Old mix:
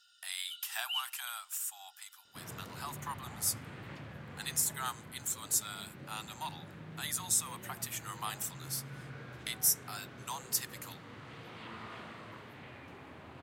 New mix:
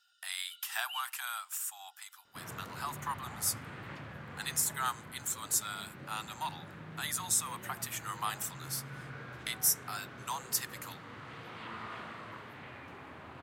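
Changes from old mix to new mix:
first sound −7.5 dB
master: add parametric band 1,300 Hz +5 dB 1.5 octaves

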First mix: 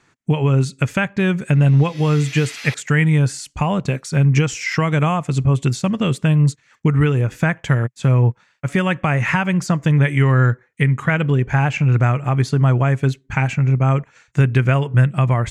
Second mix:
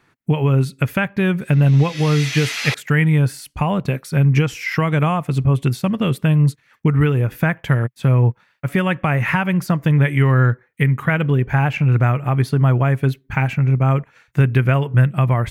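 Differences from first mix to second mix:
speech: remove low-pass with resonance 7,200 Hz, resonance Q 3.4
background +8.5 dB

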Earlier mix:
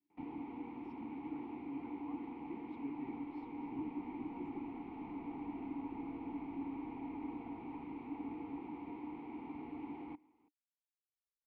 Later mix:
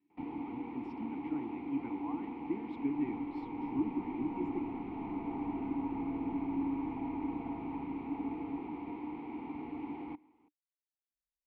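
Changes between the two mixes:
speech +11.0 dB
first sound +4.5 dB
second sound +10.5 dB

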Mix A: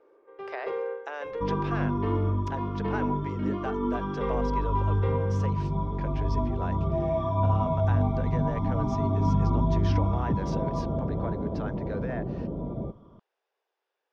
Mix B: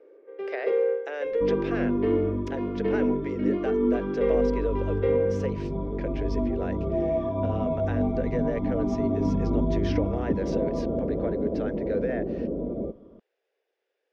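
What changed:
second sound: add high-shelf EQ 2,700 Hz −11.5 dB
master: add octave-band graphic EQ 125/250/500/1,000/2,000 Hz −11/+6/+10/−11/+6 dB

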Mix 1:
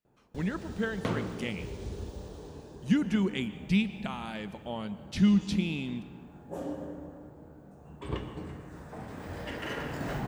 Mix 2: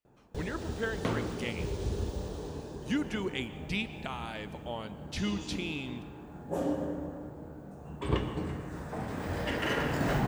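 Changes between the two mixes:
speech: add parametric band 190 Hz −12.5 dB 0.72 octaves
first sound +5.5 dB

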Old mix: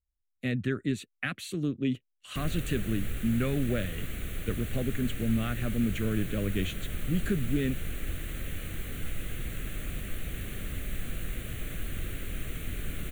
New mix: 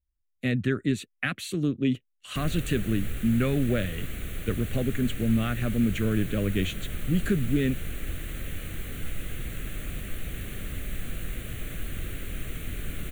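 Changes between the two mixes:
speech +4.0 dB
background: send +6.5 dB

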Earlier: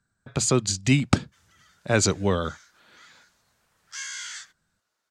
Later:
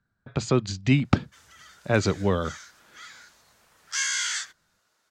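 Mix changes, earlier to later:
speech: add high-frequency loss of the air 170 metres
background +8.5 dB

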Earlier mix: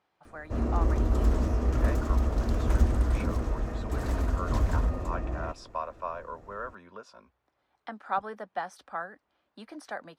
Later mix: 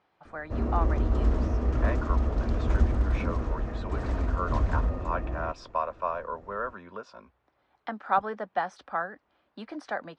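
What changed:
speech +5.5 dB
master: add high-frequency loss of the air 120 metres

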